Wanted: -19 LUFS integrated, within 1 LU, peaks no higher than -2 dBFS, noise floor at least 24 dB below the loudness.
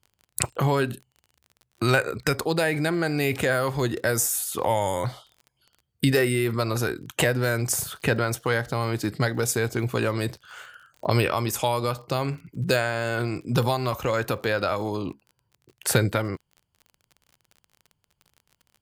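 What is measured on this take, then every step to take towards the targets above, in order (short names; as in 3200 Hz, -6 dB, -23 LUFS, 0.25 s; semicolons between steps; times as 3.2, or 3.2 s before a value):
ticks 34/s; loudness -25.5 LUFS; peak -3.5 dBFS; loudness target -19.0 LUFS
-> de-click; gain +6.5 dB; limiter -2 dBFS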